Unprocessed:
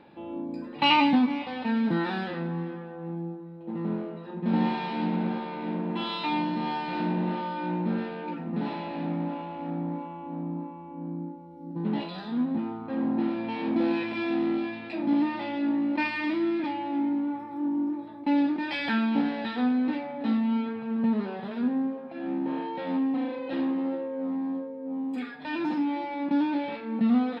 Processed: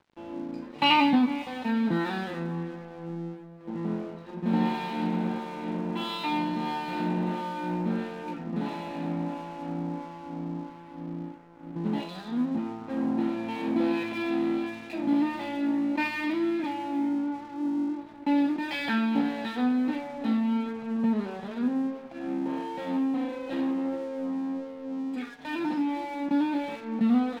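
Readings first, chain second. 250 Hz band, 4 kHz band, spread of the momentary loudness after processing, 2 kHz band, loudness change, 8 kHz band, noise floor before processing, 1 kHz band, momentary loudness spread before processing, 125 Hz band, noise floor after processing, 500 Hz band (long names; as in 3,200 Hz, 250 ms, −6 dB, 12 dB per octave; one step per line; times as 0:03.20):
−0.5 dB, −0.5 dB, 11 LU, −0.5 dB, −0.5 dB, can't be measured, −41 dBFS, −0.5 dB, 10 LU, −1.0 dB, −45 dBFS, −1.0 dB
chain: dead-zone distortion −49 dBFS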